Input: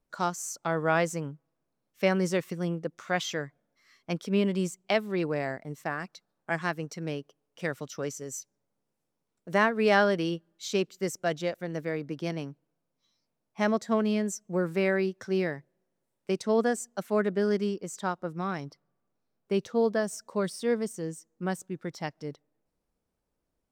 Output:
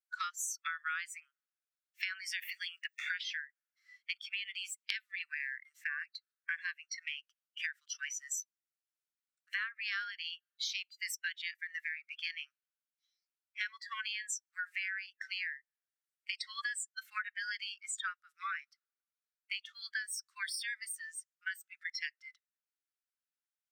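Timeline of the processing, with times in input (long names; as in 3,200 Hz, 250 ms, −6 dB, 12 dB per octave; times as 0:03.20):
0:02.42–0:03.36: multiband upward and downward compressor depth 70%
whole clip: noise reduction from a noise print of the clip's start 22 dB; Butterworth high-pass 1,300 Hz 72 dB per octave; downward compressor 8 to 1, threshold −49 dBFS; level +13 dB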